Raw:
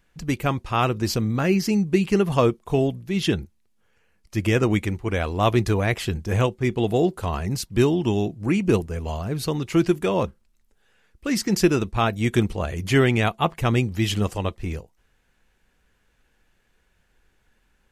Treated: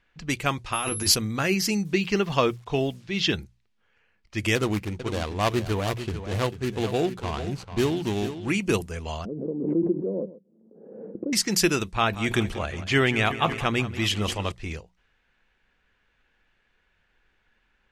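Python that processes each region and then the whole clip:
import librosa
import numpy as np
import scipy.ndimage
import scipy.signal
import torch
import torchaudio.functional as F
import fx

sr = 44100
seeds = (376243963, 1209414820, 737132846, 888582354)

y = fx.over_compress(x, sr, threshold_db=-24.0, ratio=-0.5, at=(0.72, 1.14), fade=0.02)
y = fx.doubler(y, sr, ms=12.0, db=-7, at=(0.72, 1.14), fade=0.02)
y = fx.dmg_tone(y, sr, hz=11000.0, level_db=-30.0, at=(0.72, 1.14), fade=0.02)
y = fx.chain(y, sr, fx.lowpass(hz=5700.0, slope=24),
    fx.quant_dither(seeds[0], bits=10, dither='none'), at=(1.85, 3.34))
y = fx.chain(y, sr, fx.median_filter(points=25),
    fx.echo_single(ms=444, db=-10.5), at=(4.55, 8.5))
y = fx.chain(y, sr, fx.ellip_bandpass(low_hz=180.0, high_hz=520.0, order=3, stop_db=80),
    fx.echo_single(ms=130, db=-17.0),
    fx.pre_swell(db_per_s=46.0), at=(9.25, 11.33))
y = fx.chain(y, sr, fx.high_shelf(hz=5600.0, db=-10.5),
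    fx.echo_feedback(ms=185, feedback_pct=55, wet_db=-15),
    fx.sustainer(db_per_s=120.0), at=(11.94, 14.52))
y = fx.env_lowpass(y, sr, base_hz=2800.0, full_db=-18.0)
y = fx.tilt_shelf(y, sr, db=-5.5, hz=1200.0)
y = fx.hum_notches(y, sr, base_hz=60, count=3)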